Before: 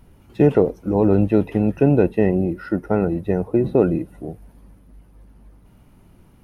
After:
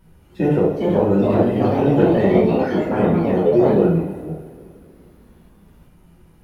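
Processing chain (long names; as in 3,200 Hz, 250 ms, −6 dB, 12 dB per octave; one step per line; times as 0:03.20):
coupled-rooms reverb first 0.54 s, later 2.6 s, from −17 dB, DRR −6 dB
delay with pitch and tempo change per echo 470 ms, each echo +3 semitones, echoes 3
level −6.5 dB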